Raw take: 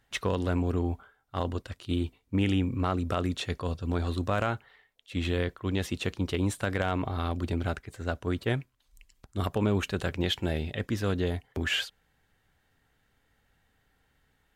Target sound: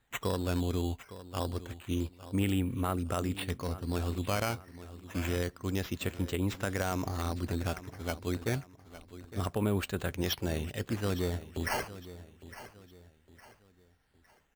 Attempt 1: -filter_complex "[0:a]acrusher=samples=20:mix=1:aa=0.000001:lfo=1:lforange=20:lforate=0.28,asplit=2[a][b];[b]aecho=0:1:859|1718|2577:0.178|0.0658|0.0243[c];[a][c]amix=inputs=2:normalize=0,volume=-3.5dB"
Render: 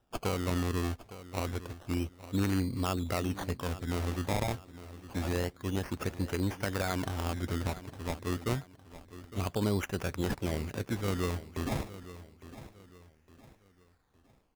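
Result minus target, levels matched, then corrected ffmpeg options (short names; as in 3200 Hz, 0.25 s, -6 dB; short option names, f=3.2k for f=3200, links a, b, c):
decimation with a swept rate: distortion +5 dB
-filter_complex "[0:a]acrusher=samples=8:mix=1:aa=0.000001:lfo=1:lforange=8:lforate=0.28,asplit=2[a][b];[b]aecho=0:1:859|1718|2577:0.178|0.0658|0.0243[c];[a][c]amix=inputs=2:normalize=0,volume=-3.5dB"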